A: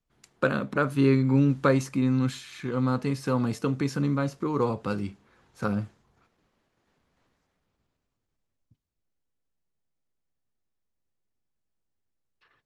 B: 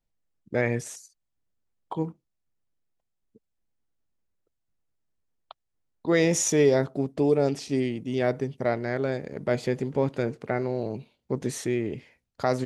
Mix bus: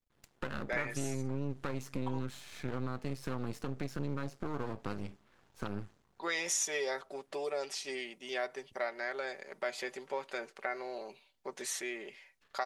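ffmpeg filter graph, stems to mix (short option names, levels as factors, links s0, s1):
-filter_complex "[0:a]alimiter=limit=0.1:level=0:latency=1:release=274,aeval=exprs='max(val(0),0)':c=same,volume=0.891[s0];[1:a]highpass=900,aecho=1:1:5.2:0.53,adelay=150,volume=0.891[s1];[s0][s1]amix=inputs=2:normalize=0,acompressor=threshold=0.02:ratio=2"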